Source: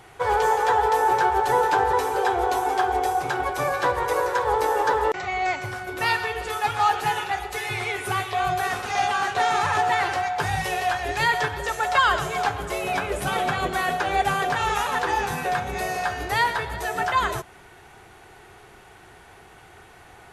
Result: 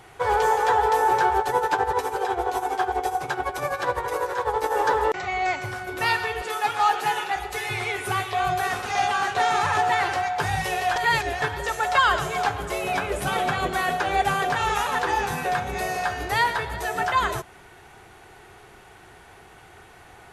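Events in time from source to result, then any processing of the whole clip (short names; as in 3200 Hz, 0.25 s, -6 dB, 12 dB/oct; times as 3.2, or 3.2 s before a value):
1.4–4.74 tremolo 12 Hz, depth 65%
6.42–7.36 HPF 200 Hz
10.96–11.42 reverse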